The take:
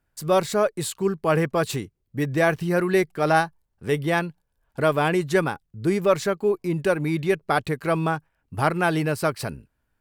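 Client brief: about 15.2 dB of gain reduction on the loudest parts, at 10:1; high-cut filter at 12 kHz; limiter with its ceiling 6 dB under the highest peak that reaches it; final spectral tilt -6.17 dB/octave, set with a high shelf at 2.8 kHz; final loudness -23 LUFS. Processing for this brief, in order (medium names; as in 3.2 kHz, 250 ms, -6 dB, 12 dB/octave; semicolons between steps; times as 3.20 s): low-pass 12 kHz; treble shelf 2.8 kHz -6.5 dB; compression 10:1, threshold -31 dBFS; trim +14.5 dB; peak limiter -12 dBFS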